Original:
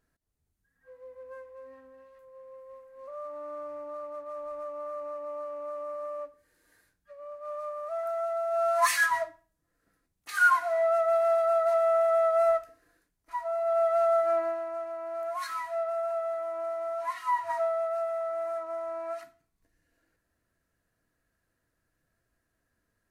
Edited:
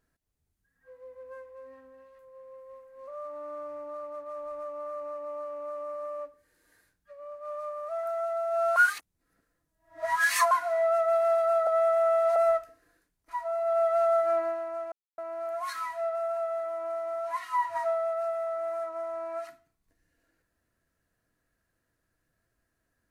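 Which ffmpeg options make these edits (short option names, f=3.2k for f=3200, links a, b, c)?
-filter_complex "[0:a]asplit=6[a][b][c][d][e][f];[a]atrim=end=8.762[g];[b]atrim=start=8.758:end=10.512,asetpts=PTS-STARTPTS,areverse[h];[c]atrim=start=10.508:end=11.672[i];[d]atrim=start=11.668:end=12.362,asetpts=PTS-STARTPTS,areverse[j];[e]atrim=start=12.358:end=14.92,asetpts=PTS-STARTPTS,afade=t=out:st=2.558:d=0.004:c=hsin,apad=pad_dur=0.26[k];[f]atrim=start=14.92,asetpts=PTS-STARTPTS,afade=t=in:d=0.004:c=hsin[l];[g][h]acrossfade=d=0.004:c1=hsin:c2=hsin[m];[m][i]acrossfade=d=0.004:c1=hsin:c2=hsin[n];[n][j]acrossfade=d=0.004:c1=hsin:c2=hsin[o];[k][l]concat=n=2:v=0:a=1[p];[o][p]acrossfade=d=0.004:c1=hsin:c2=hsin"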